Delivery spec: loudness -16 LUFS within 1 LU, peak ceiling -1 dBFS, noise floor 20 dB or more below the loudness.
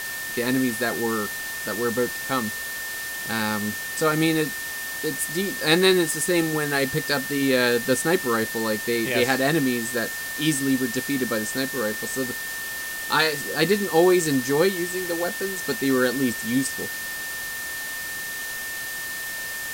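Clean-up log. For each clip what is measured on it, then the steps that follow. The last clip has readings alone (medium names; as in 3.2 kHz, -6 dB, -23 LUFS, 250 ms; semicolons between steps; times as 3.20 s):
steady tone 1.8 kHz; tone level -31 dBFS; noise floor -32 dBFS; noise floor target -44 dBFS; loudness -23.5 LUFS; peak level -5.5 dBFS; loudness target -16.0 LUFS
-> band-stop 1.8 kHz, Q 30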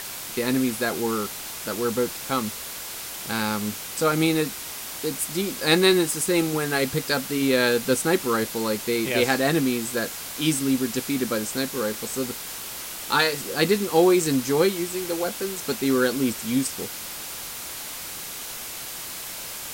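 steady tone not found; noise floor -35 dBFS; noise floor target -45 dBFS
-> noise reduction 10 dB, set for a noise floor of -35 dBFS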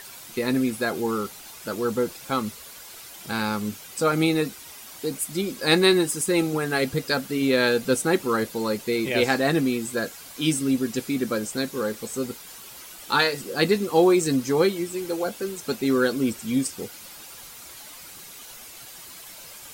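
noise floor -43 dBFS; noise floor target -45 dBFS
-> noise reduction 6 dB, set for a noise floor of -43 dBFS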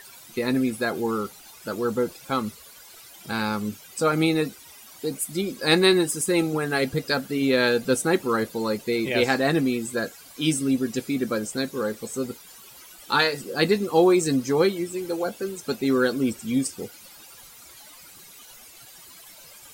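noise floor -47 dBFS; loudness -24.5 LUFS; peak level -6.0 dBFS; loudness target -16.0 LUFS
-> trim +8.5 dB; peak limiter -1 dBFS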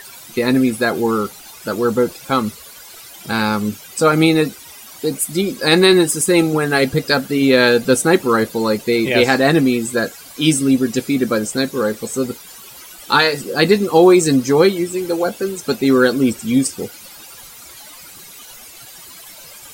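loudness -16.0 LUFS; peak level -1.0 dBFS; noise floor -39 dBFS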